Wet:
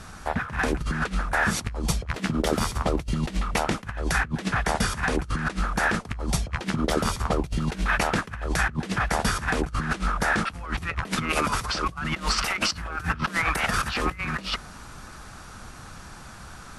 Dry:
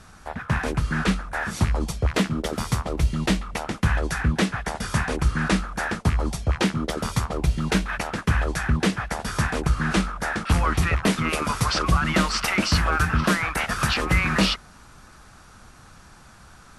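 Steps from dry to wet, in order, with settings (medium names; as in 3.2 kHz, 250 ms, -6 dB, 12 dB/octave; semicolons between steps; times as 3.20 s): compressor with a negative ratio -27 dBFS, ratio -0.5; trim +1.5 dB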